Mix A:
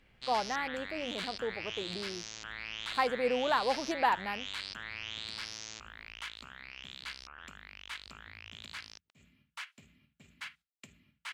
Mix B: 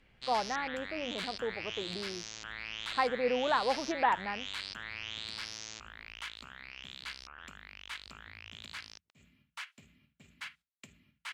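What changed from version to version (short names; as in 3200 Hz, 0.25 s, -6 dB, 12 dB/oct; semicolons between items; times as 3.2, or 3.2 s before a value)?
speech: add LPF 2600 Hz 24 dB/oct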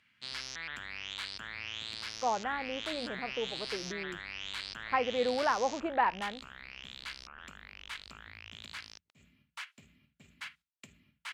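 speech: entry +1.95 s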